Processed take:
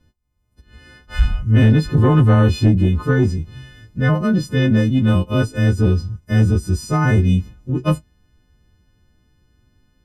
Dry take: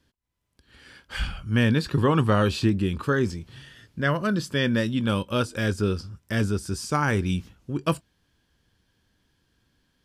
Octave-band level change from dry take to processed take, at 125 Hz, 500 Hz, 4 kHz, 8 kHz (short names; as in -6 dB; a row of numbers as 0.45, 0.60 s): +11.5 dB, +4.0 dB, 0.0 dB, n/a